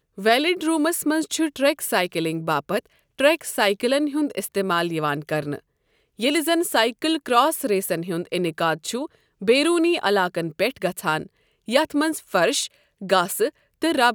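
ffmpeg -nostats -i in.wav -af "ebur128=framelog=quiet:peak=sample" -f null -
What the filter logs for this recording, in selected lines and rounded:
Integrated loudness:
  I:         -22.2 LUFS
  Threshold: -32.5 LUFS
Loudness range:
  LRA:         1.5 LU
  Threshold: -42.6 LUFS
  LRA low:   -23.5 LUFS
  LRA high:  -21.9 LUFS
Sample peak:
  Peak:       -2.5 dBFS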